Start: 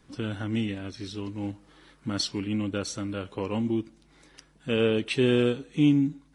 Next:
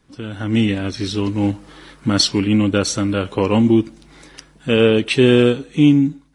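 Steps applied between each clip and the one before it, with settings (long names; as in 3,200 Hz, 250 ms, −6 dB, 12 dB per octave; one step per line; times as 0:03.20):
automatic gain control gain up to 15 dB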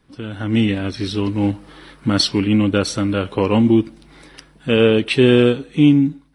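parametric band 6,800 Hz −10.5 dB 0.42 octaves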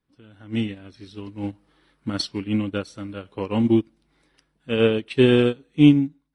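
expander for the loud parts 2.5 to 1, over −22 dBFS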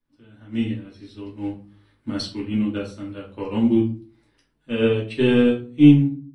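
rectangular room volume 200 cubic metres, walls furnished, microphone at 2.6 metres
level −7 dB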